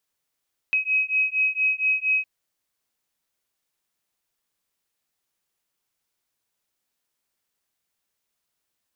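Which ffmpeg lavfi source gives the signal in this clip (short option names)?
-f lavfi -i "aevalsrc='0.0708*(sin(2*PI*2540*t)+sin(2*PI*2544.3*t))':d=1.51:s=44100"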